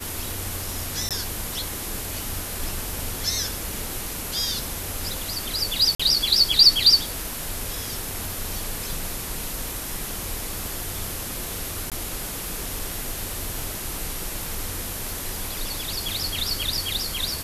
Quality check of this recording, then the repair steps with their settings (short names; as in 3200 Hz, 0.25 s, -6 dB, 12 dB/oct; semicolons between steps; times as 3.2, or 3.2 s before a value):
1.09–1.11 gap 17 ms
5.95–6 gap 45 ms
11.9–11.92 gap 17 ms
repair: interpolate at 1.09, 17 ms; interpolate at 5.95, 45 ms; interpolate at 11.9, 17 ms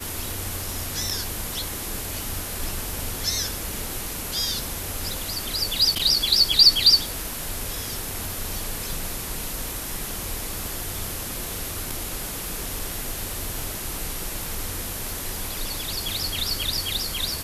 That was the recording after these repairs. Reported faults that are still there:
none